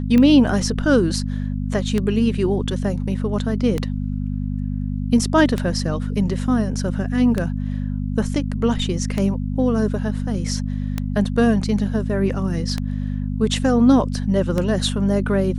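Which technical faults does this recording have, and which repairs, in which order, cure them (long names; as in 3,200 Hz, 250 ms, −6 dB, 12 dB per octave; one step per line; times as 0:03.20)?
mains hum 50 Hz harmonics 5 −24 dBFS
scratch tick 33 1/3 rpm −9 dBFS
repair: click removal
hum removal 50 Hz, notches 5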